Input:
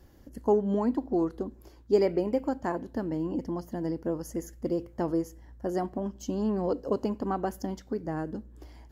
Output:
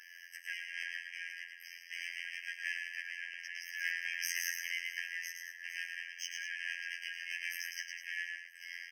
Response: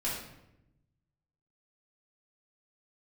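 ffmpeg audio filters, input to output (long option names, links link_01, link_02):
-filter_complex "[0:a]asplit=2[link_01][link_02];[link_02]highpass=frequency=720:poles=1,volume=37dB,asoftclip=type=tanh:threshold=-12dB[link_03];[link_01][link_03]amix=inputs=2:normalize=0,lowpass=frequency=1200:poles=1,volume=-6dB,asettb=1/sr,asplit=3[link_04][link_05][link_06];[link_04]atrim=end=6.574[link_07];[link_05]atrim=start=6.57:end=7.69,asetpts=PTS-STARTPTS,afade=type=in:duration=0.004:curve=qsin,afade=type=out:start_time=1.116:duration=0.004:curve=qsin,asplit=2[link_08][link_09];[link_09]adelay=25,volume=-7dB[link_10];[link_08][link_10]amix=inputs=2:normalize=0,atrim=end_sample=49392[link_11];[link_06]atrim=start=7.686[link_12];[link_07][link_11]acrossfade=duration=0.004:curve1=hsin:curve2=qsin[link_13];[link_13][link_12]acrossfade=duration=0.004:curve1=qsin:curve2=hsin,asplit=2[link_14][link_15];[link_15]aecho=0:1:110.8|204.1:0.562|0.316[link_16];[link_14][link_16]amix=inputs=2:normalize=0,asettb=1/sr,asplit=3[link_17][link_18][link_19];[link_17]atrim=end=3.804[link_20];[link_18]atrim=start=3.8:end=5,asetpts=PTS-STARTPTS,afade=type=in:duration=0.004:curve=qsin,afade=type=out:start_time=1.196:duration=0.004:curve=qsin,acontrast=85[link_21];[link_19]atrim=start=4.996[link_22];[link_20][link_21]acrossfade=duration=0.004:curve1=hsin:curve2=qsin[link_23];[link_23][link_22]acrossfade=duration=0.004:curve1=qsin:curve2=hsin,asplit=2[link_24][link_25];[link_25]aecho=0:1:488|976|1464|1952:0.112|0.0572|0.0292|0.0149[link_26];[link_24][link_26]amix=inputs=2:normalize=0,afftfilt=real='hypot(re,im)*cos(PI*b)':imag='0':win_size=2048:overlap=0.75,afftfilt=real='re*eq(mod(floor(b*sr/1024/1600),2),1)':imag='im*eq(mod(floor(b*sr/1024/1600),2),1)':win_size=1024:overlap=0.75,volume=-1dB"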